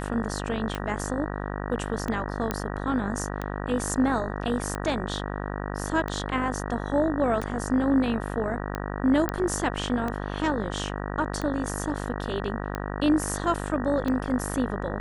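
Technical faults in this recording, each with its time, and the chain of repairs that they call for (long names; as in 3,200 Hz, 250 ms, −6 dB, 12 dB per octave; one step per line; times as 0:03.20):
mains buzz 50 Hz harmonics 38 −32 dBFS
scratch tick 45 rpm −17 dBFS
0:02.51: click −12 dBFS
0:09.29: click −12 dBFS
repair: click removal
hum removal 50 Hz, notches 38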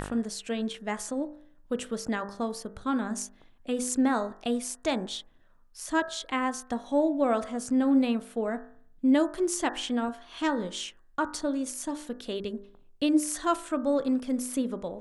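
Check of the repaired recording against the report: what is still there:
none of them is left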